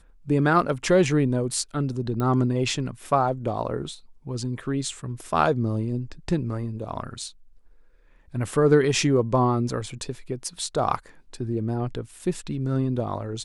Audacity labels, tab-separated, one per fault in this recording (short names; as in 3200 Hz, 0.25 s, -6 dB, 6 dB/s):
2.200000	2.200000	pop -16 dBFS